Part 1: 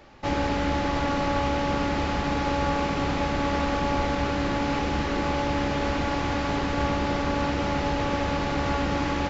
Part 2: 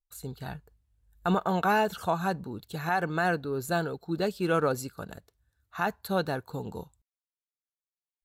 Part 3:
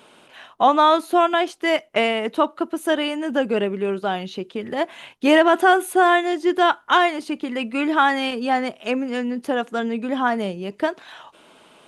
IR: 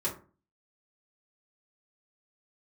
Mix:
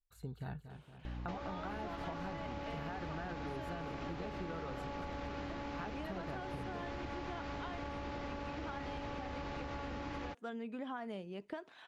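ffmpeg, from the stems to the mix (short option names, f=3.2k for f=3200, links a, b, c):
-filter_complex "[0:a]equalizer=f=180:t=o:w=0.77:g=-3.5,aeval=exprs='val(0)+0.0141*(sin(2*PI*60*n/s)+sin(2*PI*2*60*n/s)/2+sin(2*PI*3*60*n/s)/3+sin(2*PI*4*60*n/s)/4+sin(2*PI*5*60*n/s)/5)':c=same,adelay=1050,volume=-2dB[a];[1:a]bass=f=250:g=5,treble=f=4k:g=-12,acompressor=threshold=-27dB:ratio=6,volume=-6dB,asplit=2[b][c];[c]volume=-12.5dB[d];[2:a]adelay=700,volume=-15dB[e];[a][e]amix=inputs=2:normalize=0,highshelf=f=11k:g=-10.5,acompressor=threshold=-33dB:ratio=6,volume=0dB[f];[d]aecho=0:1:232|464|696|928|1160|1392|1624|1856:1|0.56|0.314|0.176|0.0983|0.0551|0.0308|0.0173[g];[b][f][g]amix=inputs=3:normalize=0,highshelf=f=7.8k:g=-5,acompressor=threshold=-39dB:ratio=6"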